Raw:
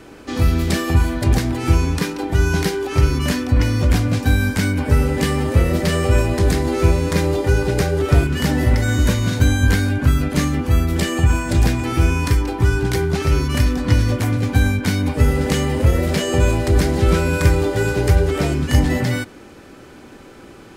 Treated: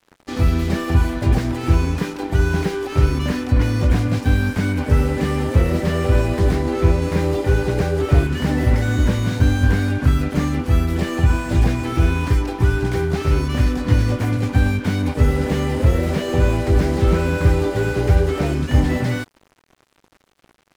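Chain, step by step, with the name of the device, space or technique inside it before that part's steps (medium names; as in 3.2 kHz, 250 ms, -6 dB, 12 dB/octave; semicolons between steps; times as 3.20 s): 6.55–7.02 s: treble shelf 4.6 kHz -7 dB; early transistor amplifier (crossover distortion -36 dBFS; slew-rate limiter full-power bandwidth 87 Hz)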